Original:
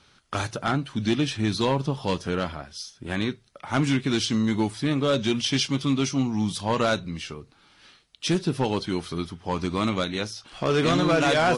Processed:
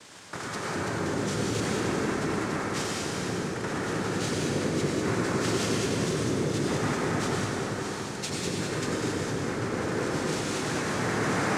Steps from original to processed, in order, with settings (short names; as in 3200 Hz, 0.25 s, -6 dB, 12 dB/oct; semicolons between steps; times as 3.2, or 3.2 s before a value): limiter -22.5 dBFS, peak gain reduction 8.5 dB; compressor 4:1, threshold -45 dBFS, peak gain reduction 16 dB; noise vocoder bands 3; split-band echo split 730 Hz, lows 0.285 s, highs 0.197 s, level -6 dB; reverb RT60 5.2 s, pre-delay 73 ms, DRR -5.5 dB; gain +9 dB